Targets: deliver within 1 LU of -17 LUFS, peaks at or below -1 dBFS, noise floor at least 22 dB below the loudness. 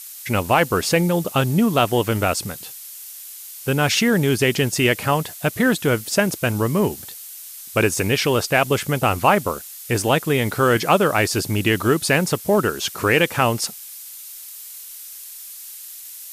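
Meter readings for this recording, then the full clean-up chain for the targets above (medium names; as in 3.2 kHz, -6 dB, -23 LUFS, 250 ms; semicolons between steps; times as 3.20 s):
noise floor -38 dBFS; noise floor target -42 dBFS; loudness -19.5 LUFS; peak level -2.0 dBFS; loudness target -17.0 LUFS
-> noise print and reduce 6 dB; trim +2.5 dB; peak limiter -1 dBFS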